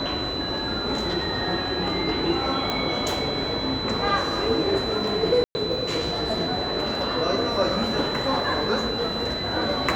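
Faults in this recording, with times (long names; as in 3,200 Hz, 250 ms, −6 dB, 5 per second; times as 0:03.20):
whistle 4,000 Hz −29 dBFS
0:02.70: click −11 dBFS
0:05.44–0:05.55: drop-out 110 ms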